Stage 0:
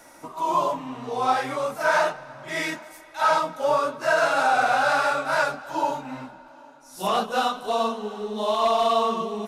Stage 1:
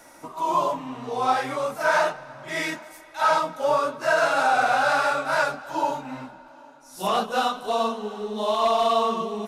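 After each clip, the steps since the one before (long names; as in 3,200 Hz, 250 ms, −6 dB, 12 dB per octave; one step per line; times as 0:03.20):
no processing that can be heard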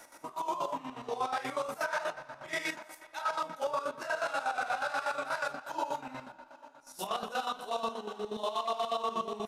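low-shelf EQ 350 Hz −8 dB
brickwall limiter −21.5 dBFS, peak gain reduction 10 dB
square-wave tremolo 8.3 Hz, depth 65%, duty 45%
level −1.5 dB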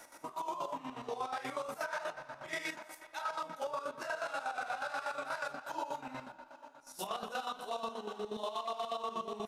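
downward compressor 2.5 to 1, threshold −35 dBFS, peak gain reduction 5.5 dB
level −1 dB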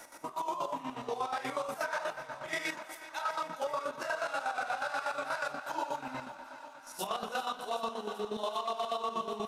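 feedback echo with a high-pass in the loop 386 ms, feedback 79%, high-pass 460 Hz, level −16 dB
level +3.5 dB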